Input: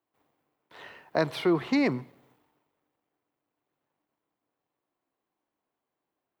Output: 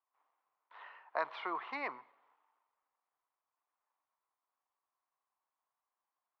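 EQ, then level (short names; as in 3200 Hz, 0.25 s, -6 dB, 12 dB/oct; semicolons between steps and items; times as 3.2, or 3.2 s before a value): ladder band-pass 1300 Hz, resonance 45%; air absorption 97 m; bell 1500 Hz -4 dB 0.67 oct; +8.0 dB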